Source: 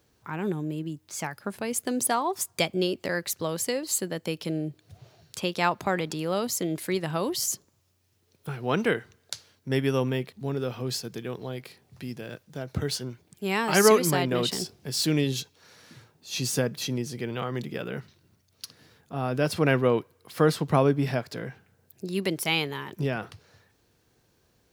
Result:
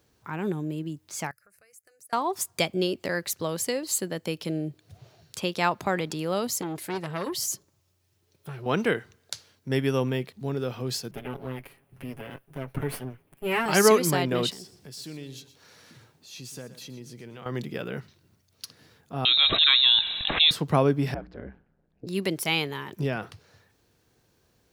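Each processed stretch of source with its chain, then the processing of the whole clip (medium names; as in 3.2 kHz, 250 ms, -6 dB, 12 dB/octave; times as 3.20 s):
1.31–2.13 s: amplifier tone stack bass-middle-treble 5-5-5 + compression 2.5:1, threshold -56 dBFS + static phaser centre 920 Hz, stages 6
6.61–8.66 s: comb of notches 240 Hz + transformer saturation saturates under 1.2 kHz
11.11–13.66 s: comb filter that takes the minimum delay 7.3 ms + high-order bell 5.3 kHz -13.5 dB 1.3 oct
14.51–17.46 s: compression 2:1, threshold -49 dBFS + bit-crushed delay 121 ms, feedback 35%, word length 10-bit, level -13 dB
19.25–20.51 s: frequency inversion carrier 3.9 kHz + level flattener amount 70%
21.14–22.07 s: tape spacing loss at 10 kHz 42 dB + hum notches 60/120/180/240/300/360 Hz + ring modulator 65 Hz
whole clip: none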